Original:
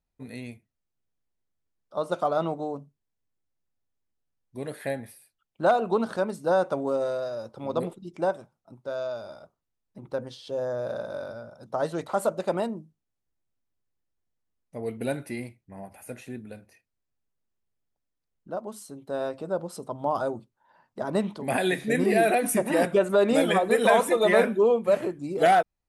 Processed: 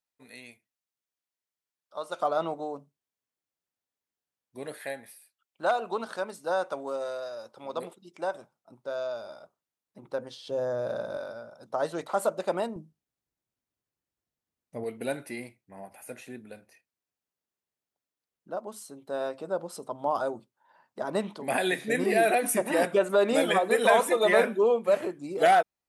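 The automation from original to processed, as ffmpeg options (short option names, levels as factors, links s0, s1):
-af "asetnsamples=n=441:p=0,asendcmd='2.2 highpass f 460;4.78 highpass f 960;8.34 highpass f 360;10.45 highpass f 89;11.17 highpass f 360;12.76 highpass f 89;14.84 highpass f 370',highpass=f=1300:p=1"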